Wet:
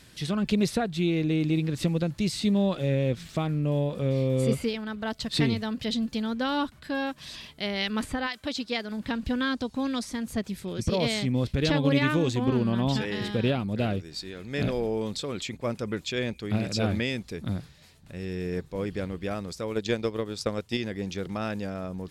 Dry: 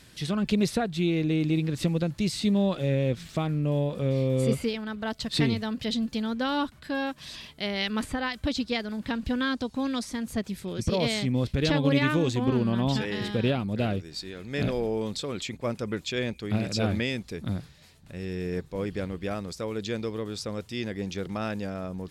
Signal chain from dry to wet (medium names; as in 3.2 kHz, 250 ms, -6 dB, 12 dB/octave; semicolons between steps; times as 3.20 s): 8.26–8.90 s: high-pass 650 Hz -> 190 Hz 6 dB/octave; 19.69–20.77 s: transient shaper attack +11 dB, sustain -6 dB